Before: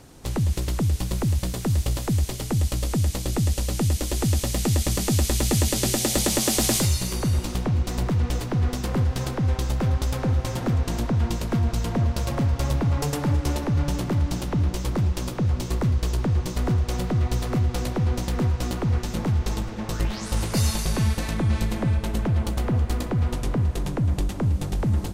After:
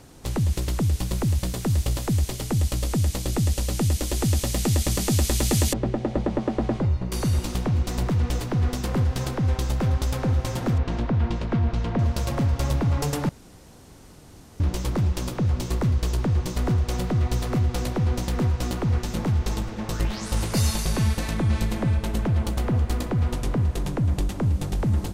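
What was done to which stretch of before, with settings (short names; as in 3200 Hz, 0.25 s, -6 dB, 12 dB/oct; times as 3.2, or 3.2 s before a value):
5.73–7.12 LPF 1100 Hz
10.78–11.99 LPF 3300 Hz
13.29–14.6 room tone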